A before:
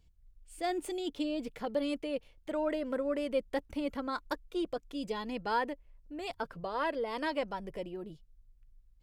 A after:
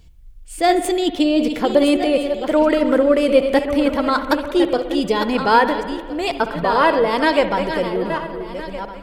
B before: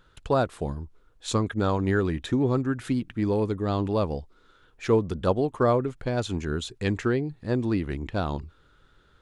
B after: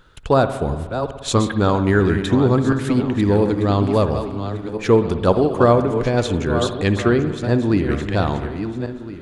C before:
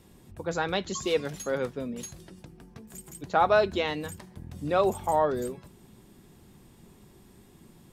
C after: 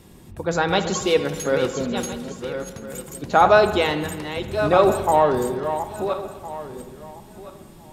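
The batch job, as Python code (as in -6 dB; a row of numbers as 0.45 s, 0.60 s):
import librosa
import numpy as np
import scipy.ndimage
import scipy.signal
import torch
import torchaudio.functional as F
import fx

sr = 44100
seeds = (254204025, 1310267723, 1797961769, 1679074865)

y = fx.reverse_delay_fb(x, sr, ms=682, feedback_pct=40, wet_db=-8.5)
y = fx.rev_spring(y, sr, rt60_s=1.5, pass_ms=(59,), chirp_ms=30, drr_db=10.0)
y = y * 10.0 ** (-2 / 20.0) / np.max(np.abs(y))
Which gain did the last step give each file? +17.5 dB, +7.5 dB, +7.5 dB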